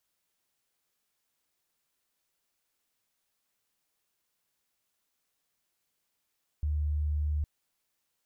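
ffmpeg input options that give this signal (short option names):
-f lavfi -i "aevalsrc='0.0473*sin(2*PI*74.7*t)':d=0.81:s=44100"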